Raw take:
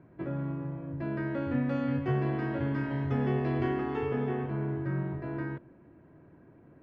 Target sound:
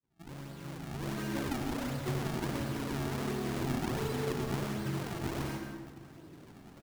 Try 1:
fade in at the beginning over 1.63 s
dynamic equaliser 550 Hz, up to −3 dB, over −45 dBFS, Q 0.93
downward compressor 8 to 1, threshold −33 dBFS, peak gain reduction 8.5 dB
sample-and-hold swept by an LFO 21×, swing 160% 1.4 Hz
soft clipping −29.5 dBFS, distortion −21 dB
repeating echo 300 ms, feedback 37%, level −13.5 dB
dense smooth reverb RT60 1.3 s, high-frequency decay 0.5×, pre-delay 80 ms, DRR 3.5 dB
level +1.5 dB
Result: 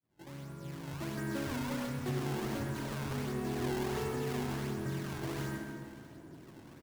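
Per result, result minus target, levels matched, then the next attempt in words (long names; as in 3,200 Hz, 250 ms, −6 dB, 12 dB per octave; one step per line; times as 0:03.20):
echo 123 ms late; soft clipping: distortion +19 dB; sample-and-hold swept by an LFO: distortion −8 dB
fade in at the beginning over 1.63 s
dynamic equaliser 550 Hz, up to −3 dB, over −45 dBFS, Q 0.93
downward compressor 8 to 1, threshold −33 dBFS, peak gain reduction 8.5 dB
sample-and-hold swept by an LFO 21×, swing 160% 1.4 Hz
soft clipping −29.5 dBFS, distortion −21 dB
repeating echo 177 ms, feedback 37%, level −13.5 dB
dense smooth reverb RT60 1.3 s, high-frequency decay 0.5×, pre-delay 80 ms, DRR 3.5 dB
level +1.5 dB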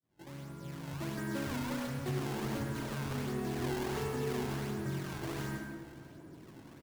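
soft clipping: distortion +19 dB; sample-and-hold swept by an LFO: distortion −8 dB
fade in at the beginning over 1.63 s
dynamic equaliser 550 Hz, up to −3 dB, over −45 dBFS, Q 0.93
downward compressor 8 to 1, threshold −33 dBFS, peak gain reduction 8.5 dB
sample-and-hold swept by an LFO 21×, swing 160% 1.4 Hz
soft clipping −18.5 dBFS, distortion −41 dB
repeating echo 177 ms, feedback 37%, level −13.5 dB
dense smooth reverb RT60 1.3 s, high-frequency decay 0.5×, pre-delay 80 ms, DRR 3.5 dB
level +1.5 dB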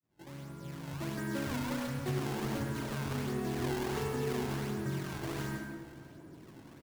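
sample-and-hold swept by an LFO: distortion −8 dB
fade in at the beginning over 1.63 s
dynamic equaliser 550 Hz, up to −3 dB, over −45 dBFS, Q 0.93
downward compressor 8 to 1, threshold −33 dBFS, peak gain reduction 8.5 dB
sample-and-hold swept by an LFO 50×, swing 160% 1.4 Hz
soft clipping −18.5 dBFS, distortion −40 dB
repeating echo 177 ms, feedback 37%, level −13.5 dB
dense smooth reverb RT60 1.3 s, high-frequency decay 0.5×, pre-delay 80 ms, DRR 3.5 dB
level +1.5 dB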